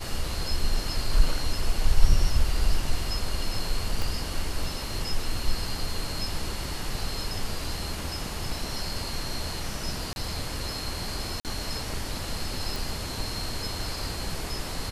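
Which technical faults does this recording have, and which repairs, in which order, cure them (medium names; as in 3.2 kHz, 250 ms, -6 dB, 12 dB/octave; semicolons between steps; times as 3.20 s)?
4.02 s: pop
10.13–10.16 s: dropout 31 ms
11.40–11.45 s: dropout 48 ms
12.76 s: pop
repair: de-click; interpolate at 10.13 s, 31 ms; interpolate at 11.40 s, 48 ms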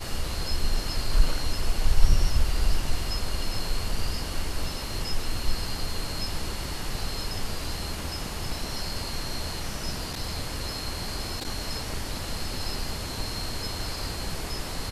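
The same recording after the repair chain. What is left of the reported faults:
4.02 s: pop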